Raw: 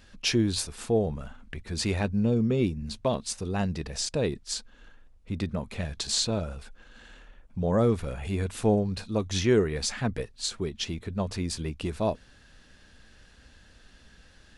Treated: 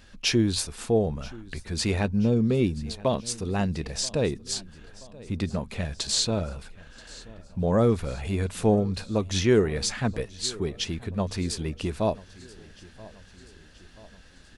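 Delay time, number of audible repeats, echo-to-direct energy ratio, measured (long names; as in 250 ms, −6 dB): 980 ms, 3, −19.5 dB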